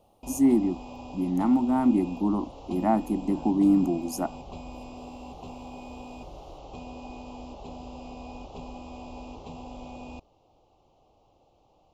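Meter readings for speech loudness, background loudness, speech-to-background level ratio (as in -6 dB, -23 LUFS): -25.0 LUFS, -42.5 LUFS, 17.5 dB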